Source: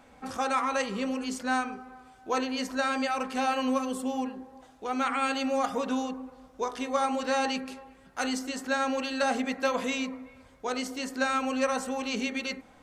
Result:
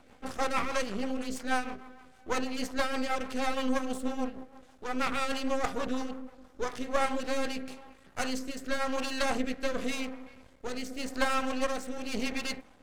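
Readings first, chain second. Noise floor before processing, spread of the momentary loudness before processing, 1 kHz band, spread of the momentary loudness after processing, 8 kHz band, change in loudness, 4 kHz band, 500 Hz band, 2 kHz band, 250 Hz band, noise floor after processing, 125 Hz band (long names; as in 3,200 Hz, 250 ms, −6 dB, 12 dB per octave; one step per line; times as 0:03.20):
−56 dBFS, 12 LU, −4.5 dB, 13 LU, −2.5 dB, −3.0 dB, −2.0 dB, −2.5 dB, −2.5 dB, −3.0 dB, −57 dBFS, can't be measured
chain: half-wave rectification
rotating-speaker cabinet horn 6.3 Hz, later 0.9 Hz, at 0:06.27
level +4 dB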